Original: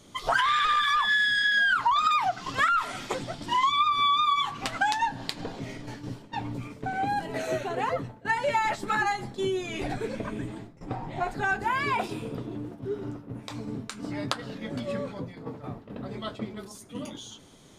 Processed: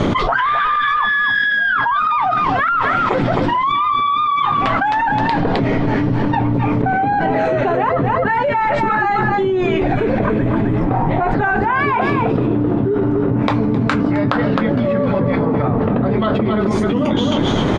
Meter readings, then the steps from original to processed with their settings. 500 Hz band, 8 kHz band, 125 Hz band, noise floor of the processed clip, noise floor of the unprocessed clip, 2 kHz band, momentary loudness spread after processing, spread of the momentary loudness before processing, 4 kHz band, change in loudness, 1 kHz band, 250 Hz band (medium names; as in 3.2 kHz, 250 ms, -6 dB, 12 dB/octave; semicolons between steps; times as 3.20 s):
+16.0 dB, no reading, +19.5 dB, -18 dBFS, -50 dBFS, +8.5 dB, 2 LU, 17 LU, +2.0 dB, +11.0 dB, +10.5 dB, +19.5 dB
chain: low-pass 1.8 kHz 12 dB/octave; on a send: delay 262 ms -9.5 dB; on the sum: level flattener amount 100%; trim +4 dB